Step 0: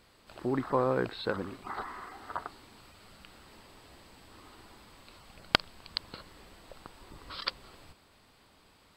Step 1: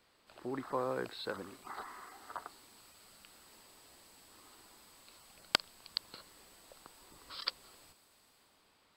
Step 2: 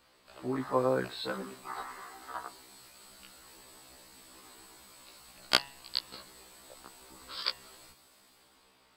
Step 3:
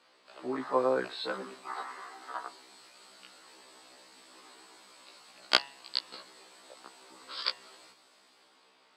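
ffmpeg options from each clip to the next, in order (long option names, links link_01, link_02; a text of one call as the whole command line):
ffmpeg -i in.wav -filter_complex "[0:a]lowshelf=frequency=180:gain=-10,acrossover=split=400|1000|5800[link_01][link_02][link_03][link_04];[link_04]dynaudnorm=framelen=100:gausssize=13:maxgain=11.5dB[link_05];[link_01][link_02][link_03][link_05]amix=inputs=4:normalize=0,volume=-6.5dB" out.wav
ffmpeg -i in.wav -af "bandreject=frequency=139:width_type=h:width=4,bandreject=frequency=278:width_type=h:width=4,bandreject=frequency=417:width_type=h:width=4,bandreject=frequency=556:width_type=h:width=4,bandreject=frequency=695:width_type=h:width=4,bandreject=frequency=834:width_type=h:width=4,bandreject=frequency=973:width_type=h:width=4,bandreject=frequency=1112:width_type=h:width=4,bandreject=frequency=1251:width_type=h:width=4,bandreject=frequency=1390:width_type=h:width=4,bandreject=frequency=1529:width_type=h:width=4,bandreject=frequency=1668:width_type=h:width=4,bandreject=frequency=1807:width_type=h:width=4,bandreject=frequency=1946:width_type=h:width=4,bandreject=frequency=2085:width_type=h:width=4,bandreject=frequency=2224:width_type=h:width=4,bandreject=frequency=2363:width_type=h:width=4,bandreject=frequency=2502:width_type=h:width=4,bandreject=frequency=2641:width_type=h:width=4,bandreject=frequency=2780:width_type=h:width=4,bandreject=frequency=2919:width_type=h:width=4,bandreject=frequency=3058:width_type=h:width=4,bandreject=frequency=3197:width_type=h:width=4,bandreject=frequency=3336:width_type=h:width=4,bandreject=frequency=3475:width_type=h:width=4,afftfilt=real='re*1.73*eq(mod(b,3),0)':imag='im*1.73*eq(mod(b,3),0)':win_size=2048:overlap=0.75,volume=7.5dB" out.wav
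ffmpeg -i in.wav -af "highpass=290,lowpass=6500,volume=1.5dB" out.wav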